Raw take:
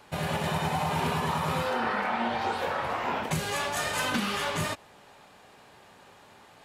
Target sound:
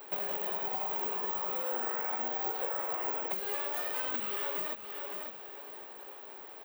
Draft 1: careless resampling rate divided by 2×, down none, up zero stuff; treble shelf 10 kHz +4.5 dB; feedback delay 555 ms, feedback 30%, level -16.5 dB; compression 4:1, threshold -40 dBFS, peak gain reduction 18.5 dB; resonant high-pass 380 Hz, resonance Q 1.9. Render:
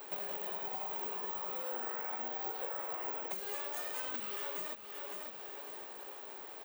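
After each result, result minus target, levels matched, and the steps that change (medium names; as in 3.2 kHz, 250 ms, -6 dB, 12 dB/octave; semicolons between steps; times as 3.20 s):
8 kHz band +6.0 dB; compression: peak gain reduction +5 dB
add after resonant high-pass: peaking EQ 7 kHz -8.5 dB 0.93 oct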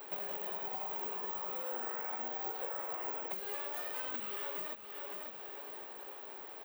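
compression: peak gain reduction +5 dB
change: compression 4:1, threshold -33 dBFS, peak gain reduction 13.5 dB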